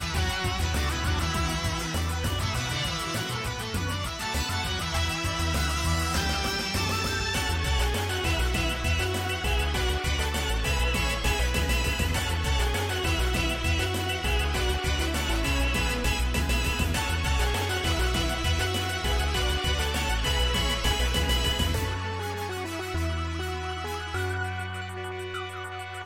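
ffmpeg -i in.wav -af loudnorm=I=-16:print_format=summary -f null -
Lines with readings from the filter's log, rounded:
Input Integrated:    -27.6 LUFS
Input True Peak:     -12.4 dBTP
Input LRA:             5.4 LU
Input Threshold:     -37.6 LUFS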